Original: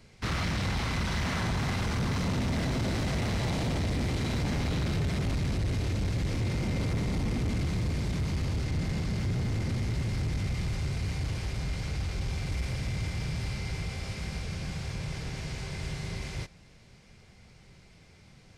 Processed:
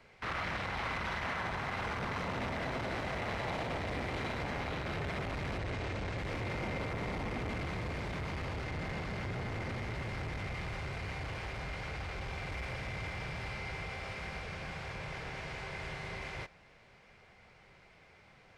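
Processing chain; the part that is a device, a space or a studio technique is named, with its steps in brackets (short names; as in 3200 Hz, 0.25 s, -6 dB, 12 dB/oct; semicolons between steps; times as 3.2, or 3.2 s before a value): DJ mixer with the lows and highs turned down (three-band isolator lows -14 dB, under 460 Hz, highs -16 dB, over 2800 Hz; limiter -31 dBFS, peak gain reduction 7 dB); 5.59–6.18 LPF 9300 Hz 24 dB/oct; gain +3.5 dB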